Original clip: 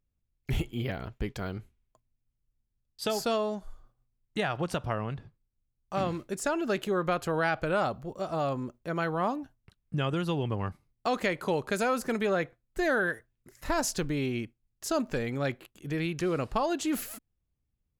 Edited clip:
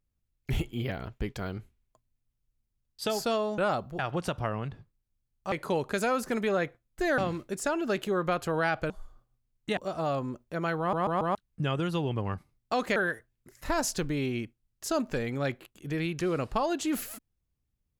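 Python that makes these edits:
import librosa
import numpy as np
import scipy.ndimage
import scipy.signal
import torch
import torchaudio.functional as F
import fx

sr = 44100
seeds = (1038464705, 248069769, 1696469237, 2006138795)

y = fx.edit(x, sr, fx.swap(start_s=3.58, length_s=0.87, other_s=7.7, other_length_s=0.41),
    fx.stutter_over(start_s=9.13, slice_s=0.14, count=4),
    fx.move(start_s=11.3, length_s=1.66, to_s=5.98), tone=tone)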